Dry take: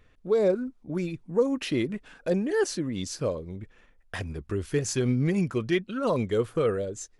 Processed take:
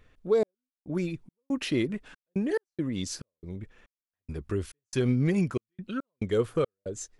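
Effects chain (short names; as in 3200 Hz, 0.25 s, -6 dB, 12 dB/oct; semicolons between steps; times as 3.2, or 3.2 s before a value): step gate "xx..xx.xxx.x.xx." 70 bpm -60 dB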